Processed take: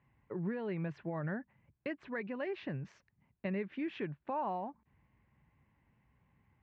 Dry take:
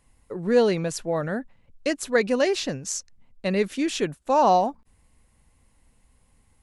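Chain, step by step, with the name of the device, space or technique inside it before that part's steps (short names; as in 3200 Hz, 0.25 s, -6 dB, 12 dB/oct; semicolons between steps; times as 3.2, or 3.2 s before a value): bass amplifier (compressor 4:1, threshold -29 dBFS, peak gain reduction 13 dB; speaker cabinet 67–2300 Hz, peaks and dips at 76 Hz -8 dB, 140 Hz +4 dB, 260 Hz -5 dB, 490 Hz -9 dB, 700 Hz -5 dB, 1300 Hz -5 dB); gain -3 dB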